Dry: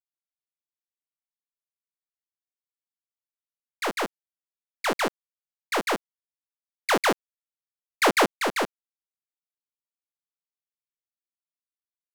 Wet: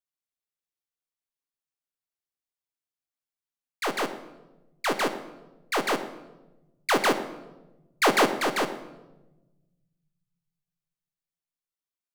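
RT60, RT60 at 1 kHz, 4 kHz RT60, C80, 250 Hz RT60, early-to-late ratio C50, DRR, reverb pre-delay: 1.1 s, 0.95 s, 0.75 s, 13.0 dB, 1.9 s, 11.0 dB, 8.0 dB, 3 ms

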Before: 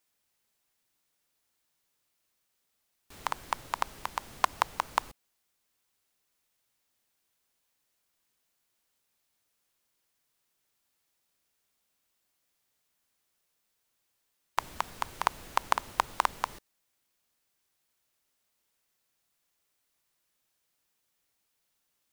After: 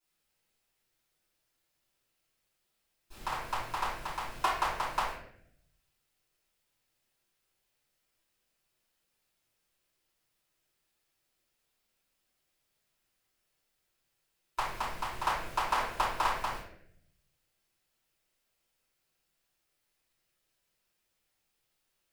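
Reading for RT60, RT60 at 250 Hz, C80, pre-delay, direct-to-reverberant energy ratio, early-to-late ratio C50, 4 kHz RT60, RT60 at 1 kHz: 0.70 s, 1.1 s, 5.0 dB, 3 ms, -14.5 dB, 1.0 dB, 0.50 s, 0.60 s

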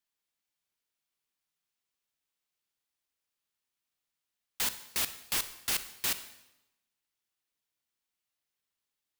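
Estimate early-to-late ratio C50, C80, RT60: 12.5 dB, 15.0 dB, 0.95 s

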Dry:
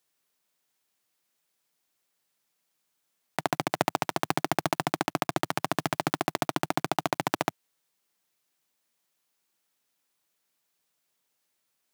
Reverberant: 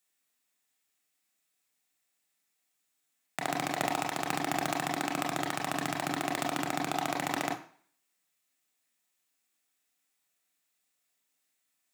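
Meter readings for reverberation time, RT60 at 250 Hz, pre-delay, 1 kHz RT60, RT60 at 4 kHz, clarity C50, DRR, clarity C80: 0.50 s, 0.45 s, 25 ms, 0.50 s, 0.50 s, 10.0 dB, 1.0 dB, 14.5 dB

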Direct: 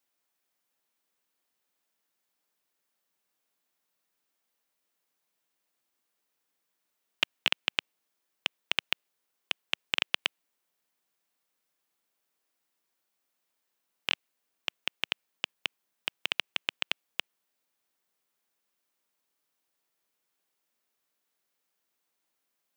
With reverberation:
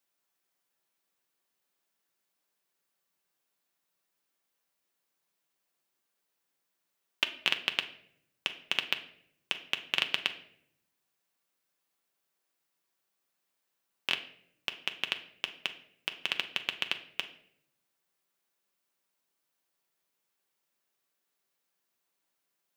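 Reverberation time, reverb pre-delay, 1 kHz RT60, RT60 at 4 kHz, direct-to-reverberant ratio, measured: 0.70 s, 5 ms, 0.55 s, 0.50 s, 6.0 dB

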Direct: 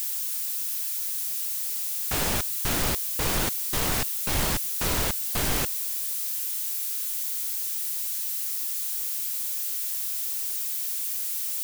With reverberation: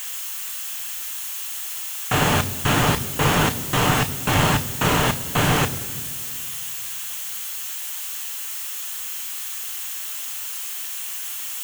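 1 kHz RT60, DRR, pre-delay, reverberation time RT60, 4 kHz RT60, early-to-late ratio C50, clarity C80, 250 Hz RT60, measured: 1.9 s, 9.5 dB, 3 ms, 2.1 s, 1.4 s, 17.0 dB, 17.5 dB, 2.8 s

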